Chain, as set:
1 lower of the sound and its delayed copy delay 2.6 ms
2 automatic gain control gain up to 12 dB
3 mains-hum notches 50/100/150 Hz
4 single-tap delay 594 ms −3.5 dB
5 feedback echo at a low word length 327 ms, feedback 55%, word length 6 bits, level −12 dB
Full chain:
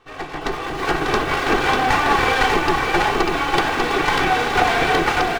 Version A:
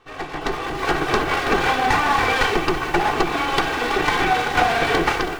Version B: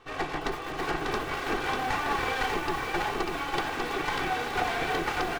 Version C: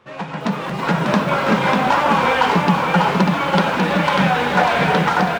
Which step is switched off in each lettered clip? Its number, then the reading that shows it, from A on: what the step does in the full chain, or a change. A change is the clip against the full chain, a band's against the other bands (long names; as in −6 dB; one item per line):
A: 4, change in momentary loudness spread −1 LU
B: 2, change in momentary loudness spread −4 LU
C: 1, 125 Hz band +8.5 dB